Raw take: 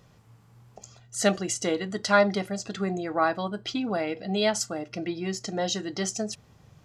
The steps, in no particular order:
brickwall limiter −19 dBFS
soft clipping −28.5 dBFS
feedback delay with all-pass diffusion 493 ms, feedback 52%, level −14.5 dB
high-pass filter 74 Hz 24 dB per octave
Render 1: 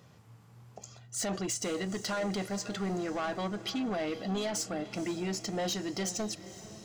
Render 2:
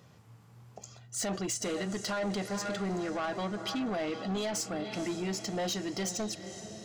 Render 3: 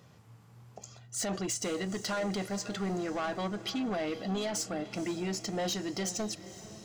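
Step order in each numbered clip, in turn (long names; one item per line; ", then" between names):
brickwall limiter, then high-pass filter, then soft clipping, then feedback delay with all-pass diffusion
feedback delay with all-pass diffusion, then brickwall limiter, then high-pass filter, then soft clipping
high-pass filter, then brickwall limiter, then soft clipping, then feedback delay with all-pass diffusion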